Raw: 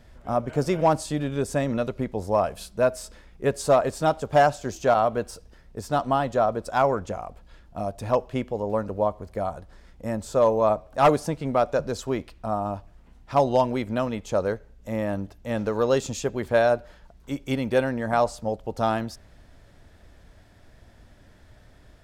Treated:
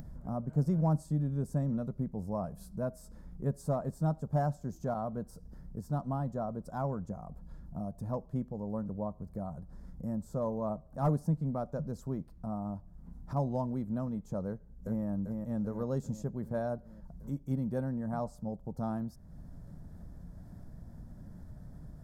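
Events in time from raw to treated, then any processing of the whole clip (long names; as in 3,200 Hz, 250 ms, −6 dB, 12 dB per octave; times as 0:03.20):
0:14.47–0:15.05: delay throw 390 ms, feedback 55%, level −3.5 dB
whole clip: drawn EQ curve 110 Hz 0 dB, 160 Hz +10 dB, 370 Hz −8 dB, 1,000 Hz −9 dB, 1,600 Hz −15 dB, 2,700 Hz −29 dB, 5,100 Hz −15 dB, 8,800 Hz −11 dB, 13,000 Hz −5 dB; upward compression, threshold −28 dBFS; level −7 dB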